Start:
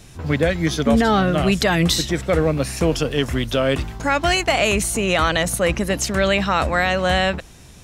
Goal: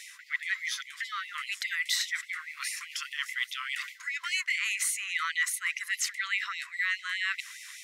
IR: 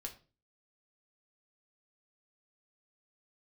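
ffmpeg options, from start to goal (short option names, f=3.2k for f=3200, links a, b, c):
-af "equalizer=f=2k:w=5.4:g=13.5,areverse,acompressor=threshold=-27dB:ratio=20,areverse,afftfilt=real='re*gte(b*sr/1024,950*pow(2000/950,0.5+0.5*sin(2*PI*4.9*pts/sr)))':imag='im*gte(b*sr/1024,950*pow(2000/950,0.5+0.5*sin(2*PI*4.9*pts/sr)))':win_size=1024:overlap=0.75,volume=3dB"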